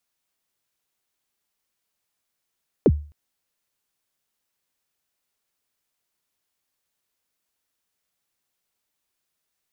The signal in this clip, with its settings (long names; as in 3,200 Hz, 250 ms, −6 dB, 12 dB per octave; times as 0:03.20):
synth kick length 0.26 s, from 530 Hz, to 74 Hz, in 47 ms, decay 0.38 s, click off, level −8.5 dB